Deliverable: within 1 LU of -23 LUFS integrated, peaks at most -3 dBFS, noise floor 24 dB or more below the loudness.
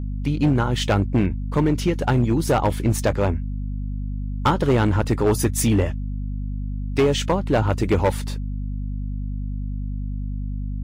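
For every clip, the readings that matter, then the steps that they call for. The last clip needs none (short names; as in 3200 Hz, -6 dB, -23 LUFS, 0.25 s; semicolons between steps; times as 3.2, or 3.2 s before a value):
clipped 1.5%; flat tops at -12.5 dBFS; hum 50 Hz; harmonics up to 250 Hz; hum level -25 dBFS; loudness -23.0 LUFS; peak -12.5 dBFS; loudness target -23.0 LUFS
-> clip repair -12.5 dBFS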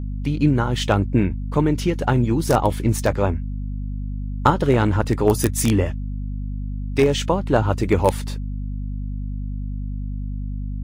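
clipped 0.0%; hum 50 Hz; harmonics up to 250 Hz; hum level -24 dBFS
-> notches 50/100/150/200/250 Hz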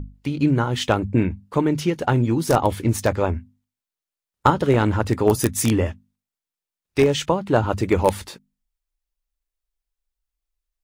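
hum none; loudness -21.0 LUFS; peak -3.0 dBFS; loudness target -23.0 LUFS
-> gain -2 dB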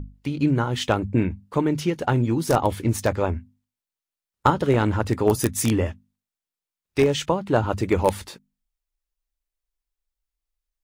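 loudness -23.0 LUFS; peak -5.0 dBFS; noise floor -90 dBFS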